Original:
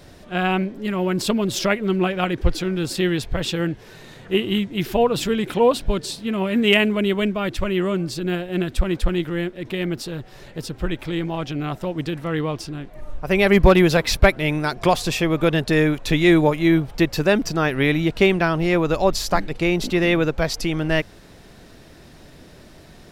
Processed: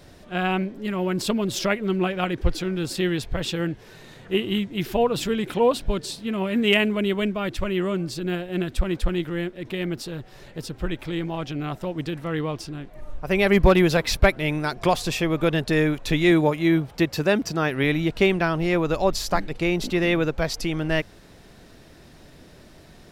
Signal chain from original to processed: 16.31–17.84 s: high-pass 63 Hz; trim -3 dB

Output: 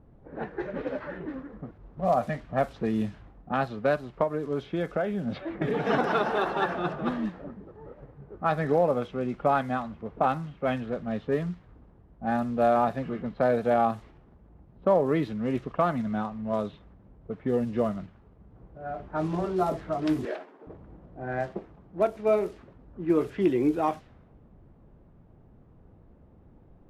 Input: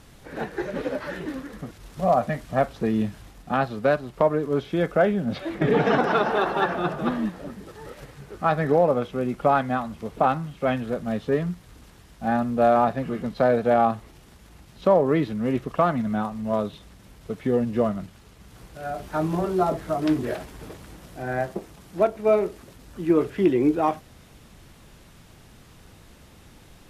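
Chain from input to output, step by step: 20.25–20.67 s: high-pass 290 Hz 24 dB/octave; level-controlled noise filter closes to 610 Hz, open at -18 dBFS; 4.23–5.89 s: compression, threshold -20 dBFS, peak gain reduction 6.5 dB; trim -4 dB

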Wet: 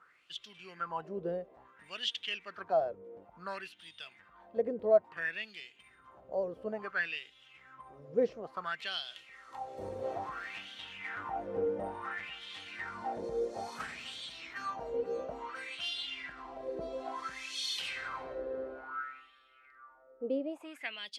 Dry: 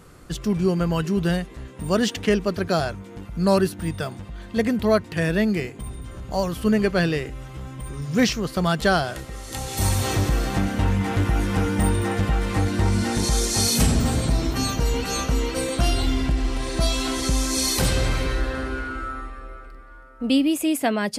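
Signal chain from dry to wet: wah-wah 0.58 Hz 470–3400 Hz, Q 6.2

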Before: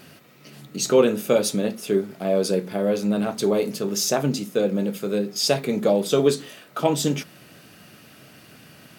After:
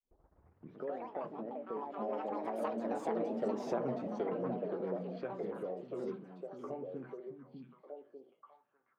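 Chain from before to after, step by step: tape start-up on the opening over 1.01 s; Doppler pass-by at 3.65 s, 35 m/s, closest 7.2 m; level-controlled noise filter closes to 930 Hz, open at -27.5 dBFS; RIAA curve playback; gate -54 dBFS, range -23 dB; three-band isolator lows -20 dB, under 300 Hz, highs -21 dB, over 2.3 kHz; compression 2.5:1, threshold -52 dBFS, peak gain reduction 22.5 dB; ever faster or slower copies 277 ms, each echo +5 st, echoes 2; repeats whose band climbs or falls 598 ms, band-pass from 190 Hz, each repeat 1.4 oct, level -0.5 dB; trim +8 dB

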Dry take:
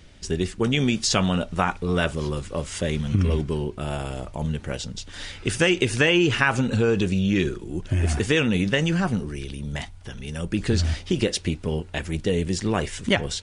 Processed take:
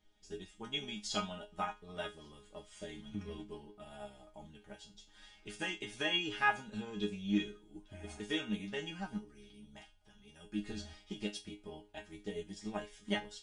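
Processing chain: chord resonator G#3 fifth, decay 0.29 s; small resonant body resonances 780/3300 Hz, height 18 dB, ringing for 85 ms; upward expansion 1.5:1, over -49 dBFS; trim +2.5 dB

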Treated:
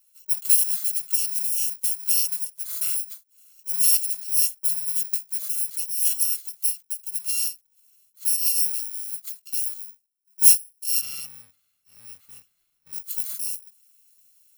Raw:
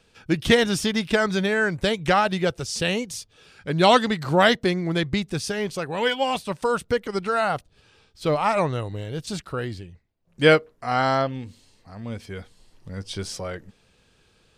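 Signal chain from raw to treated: bit-reversed sample order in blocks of 128 samples; 11.01–12.93 s: tone controls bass +13 dB, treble -14 dB; gain riding within 5 dB 2 s; differentiator; endings held to a fixed fall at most 290 dB/s; trim -5 dB

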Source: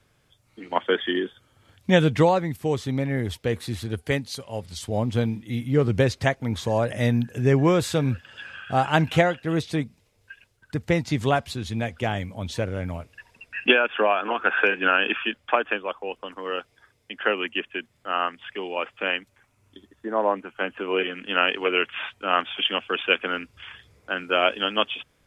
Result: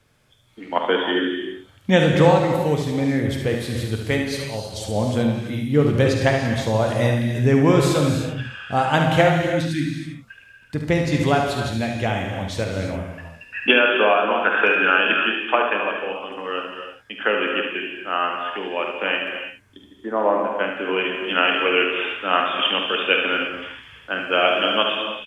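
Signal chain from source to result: spectral replace 9.44–10.27 s, 340–1400 Hz both; early reflections 48 ms -10.5 dB, 73 ms -7.5 dB; gated-style reverb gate 360 ms flat, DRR 3 dB; trim +1.5 dB

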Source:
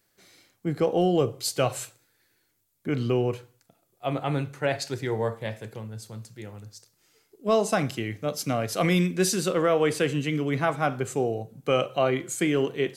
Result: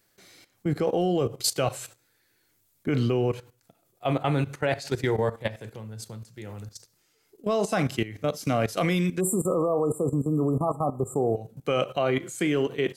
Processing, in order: level held to a coarse grid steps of 15 dB; spectral selection erased 9.20–11.36 s, 1.3–7.1 kHz; trim +6.5 dB

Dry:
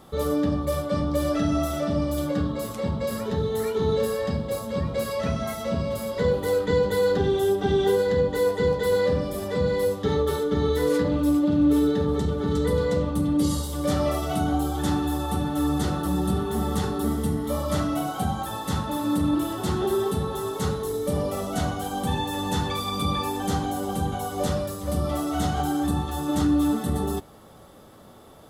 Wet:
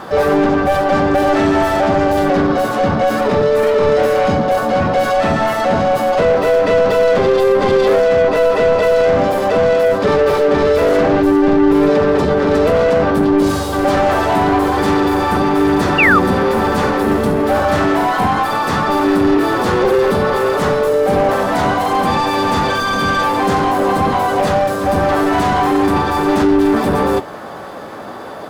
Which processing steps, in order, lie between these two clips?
overdrive pedal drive 28 dB, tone 1 kHz, clips at -9.5 dBFS; harmony voices +5 st -3 dB; painted sound fall, 15.98–16.19 s, 1.1–2.9 kHz -14 dBFS; trim +3 dB

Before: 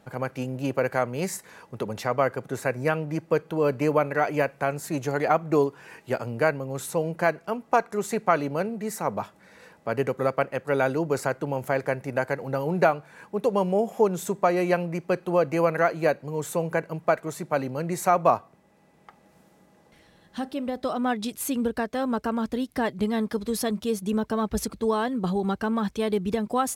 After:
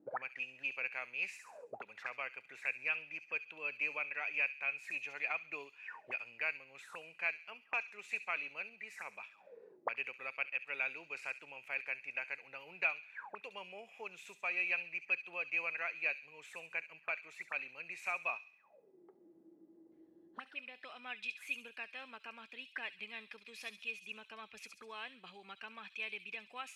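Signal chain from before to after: auto-wah 300–2500 Hz, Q 20, up, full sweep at -27.5 dBFS; feedback echo behind a high-pass 68 ms, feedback 45%, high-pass 4.3 kHz, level -4 dB; trim +11 dB

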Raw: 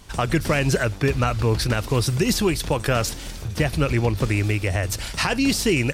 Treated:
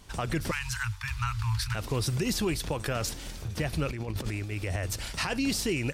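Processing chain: 0.51–1.75 s: Chebyshev band-stop 120–900 Hz, order 5; peak limiter -14 dBFS, peak gain reduction 5 dB; 3.91–4.58 s: compressor with a negative ratio -26 dBFS, ratio -0.5; trim -6 dB

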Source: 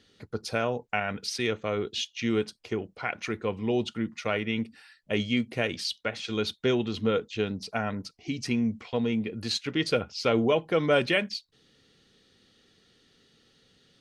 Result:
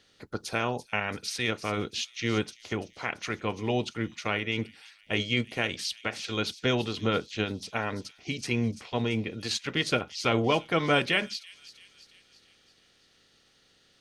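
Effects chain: spectral peaks clipped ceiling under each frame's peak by 12 dB; on a send: feedback echo behind a high-pass 338 ms, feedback 54%, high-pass 5 kHz, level -10 dB; on the sum: trim -1 dB

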